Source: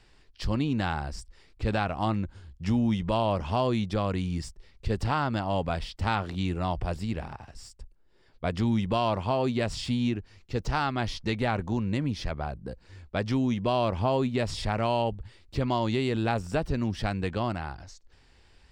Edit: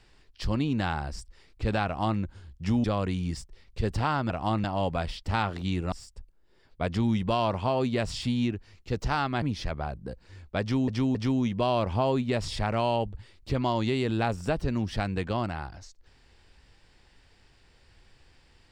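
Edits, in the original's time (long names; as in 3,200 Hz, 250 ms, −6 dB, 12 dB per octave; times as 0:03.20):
0:01.86–0:02.20: duplicate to 0:05.37
0:02.84–0:03.91: remove
0:06.65–0:07.55: remove
0:11.05–0:12.02: remove
0:13.21–0:13.48: repeat, 3 plays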